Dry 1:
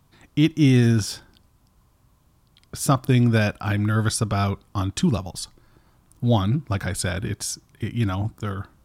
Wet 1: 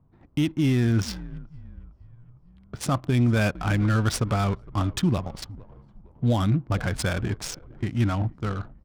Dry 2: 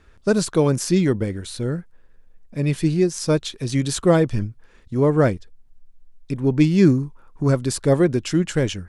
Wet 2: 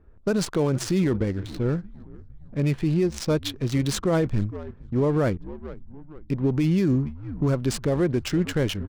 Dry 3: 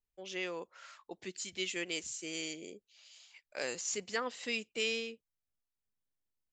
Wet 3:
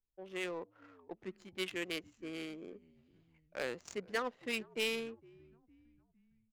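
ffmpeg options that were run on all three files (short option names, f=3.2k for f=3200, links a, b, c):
-filter_complex "[0:a]asplit=5[a][b][c][d][e];[b]adelay=458,afreqshift=-79,volume=-20.5dB[f];[c]adelay=916,afreqshift=-158,volume=-26.3dB[g];[d]adelay=1374,afreqshift=-237,volume=-32.2dB[h];[e]adelay=1832,afreqshift=-316,volume=-38dB[i];[a][f][g][h][i]amix=inputs=5:normalize=0,adynamicsmooth=sensitivity=7:basefreq=690,alimiter=limit=-14.5dB:level=0:latency=1:release=47"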